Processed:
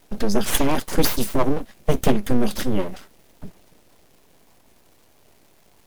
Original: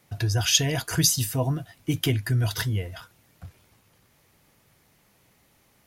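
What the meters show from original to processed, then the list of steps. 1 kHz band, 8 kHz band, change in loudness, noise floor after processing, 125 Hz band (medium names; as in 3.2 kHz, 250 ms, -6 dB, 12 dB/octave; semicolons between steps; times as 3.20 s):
+9.5 dB, -5.0 dB, +1.0 dB, -56 dBFS, -5.0 dB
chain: crackle 550 per s -48 dBFS; resonant low shelf 650 Hz +7 dB, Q 3; full-wave rectifier; trim +1.5 dB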